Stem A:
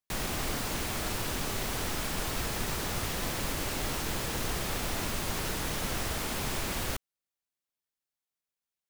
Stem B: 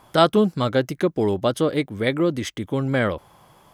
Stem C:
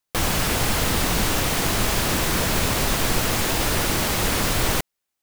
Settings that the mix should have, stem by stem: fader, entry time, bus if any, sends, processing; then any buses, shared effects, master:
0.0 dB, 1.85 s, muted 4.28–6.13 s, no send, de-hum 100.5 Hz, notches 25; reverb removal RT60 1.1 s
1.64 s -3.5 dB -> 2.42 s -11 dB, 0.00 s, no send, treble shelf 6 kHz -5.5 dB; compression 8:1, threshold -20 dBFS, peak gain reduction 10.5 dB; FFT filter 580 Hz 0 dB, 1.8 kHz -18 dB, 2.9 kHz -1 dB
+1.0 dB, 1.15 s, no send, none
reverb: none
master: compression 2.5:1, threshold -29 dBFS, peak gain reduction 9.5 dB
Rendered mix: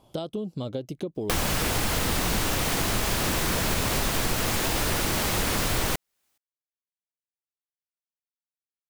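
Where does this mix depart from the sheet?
stem A: muted; stem C +1.0 dB -> +8.5 dB

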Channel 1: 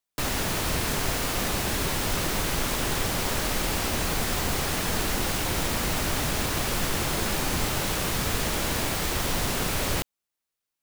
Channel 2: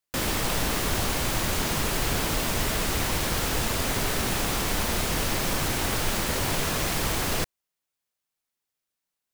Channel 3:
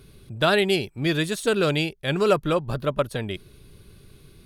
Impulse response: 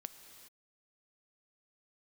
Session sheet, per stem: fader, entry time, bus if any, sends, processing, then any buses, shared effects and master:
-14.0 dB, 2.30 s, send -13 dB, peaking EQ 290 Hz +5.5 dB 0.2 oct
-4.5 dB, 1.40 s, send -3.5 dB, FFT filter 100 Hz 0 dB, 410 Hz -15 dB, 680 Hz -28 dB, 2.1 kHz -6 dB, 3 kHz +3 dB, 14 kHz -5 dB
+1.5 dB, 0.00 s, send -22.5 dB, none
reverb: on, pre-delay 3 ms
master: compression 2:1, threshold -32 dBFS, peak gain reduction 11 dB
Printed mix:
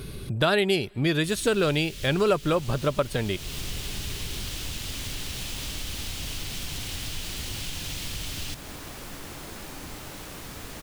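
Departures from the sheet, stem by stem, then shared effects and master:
stem 2: entry 1.40 s -> 1.10 s; stem 3 +1.5 dB -> +12.0 dB

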